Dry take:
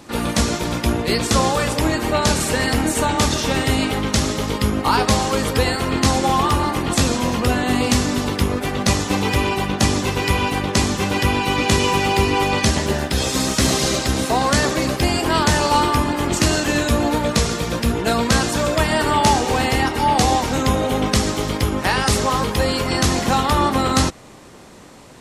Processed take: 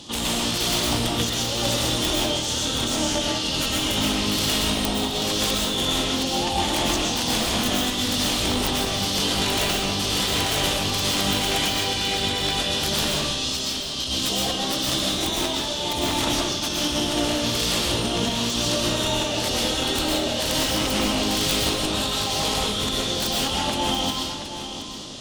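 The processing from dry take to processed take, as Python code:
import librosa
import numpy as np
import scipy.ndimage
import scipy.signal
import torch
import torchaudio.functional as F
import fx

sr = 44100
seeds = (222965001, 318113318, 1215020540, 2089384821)

p1 = fx.high_shelf_res(x, sr, hz=3200.0, db=8.0, q=3.0)
p2 = fx.over_compress(p1, sr, threshold_db=-19.0, ratio=-0.5)
p3 = fx.cheby_harmonics(p2, sr, harmonics=(3,), levels_db=(-7,), full_scale_db=-1.5)
p4 = (np.mod(10.0 ** (12.0 / 20.0) * p3 + 1.0, 2.0) - 1.0) / 10.0 ** (12.0 / 20.0)
p5 = fx.formant_shift(p4, sr, semitones=-4)
p6 = p5 + fx.echo_single(p5, sr, ms=723, db=-10.5, dry=0)
p7 = fx.rev_freeverb(p6, sr, rt60_s=1.0, hf_ratio=0.85, predelay_ms=85, drr_db=-3.5)
y = p7 * 10.0 ** (3.0 / 20.0)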